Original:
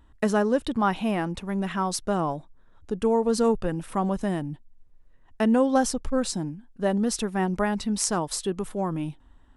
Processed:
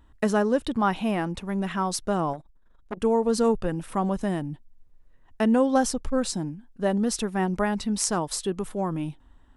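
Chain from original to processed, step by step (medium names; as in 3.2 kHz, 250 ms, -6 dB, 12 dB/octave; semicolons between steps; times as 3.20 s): 2.33–3.00 s: transformer saturation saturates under 920 Hz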